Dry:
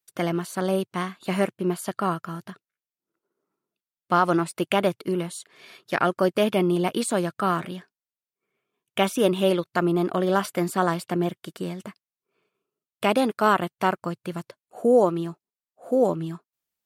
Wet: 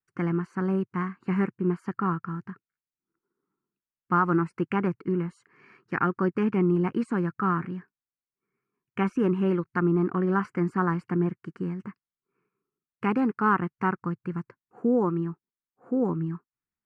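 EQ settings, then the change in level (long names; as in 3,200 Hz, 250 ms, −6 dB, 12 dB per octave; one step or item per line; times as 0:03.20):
head-to-tape spacing loss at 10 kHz 35 dB
phaser with its sweep stopped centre 1,500 Hz, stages 4
+3.5 dB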